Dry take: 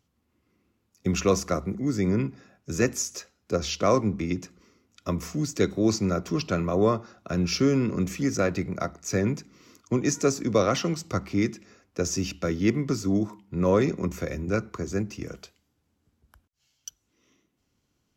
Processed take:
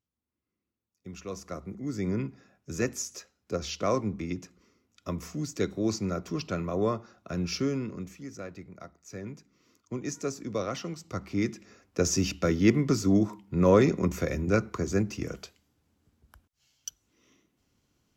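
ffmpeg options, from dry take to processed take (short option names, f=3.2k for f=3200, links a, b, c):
-af "volume=12dB,afade=t=in:st=1.25:d=0.86:silence=0.251189,afade=t=out:st=7.53:d=0.65:silence=0.298538,afade=t=in:st=9.09:d=1.02:silence=0.473151,afade=t=in:st=11.02:d=1.03:silence=0.281838"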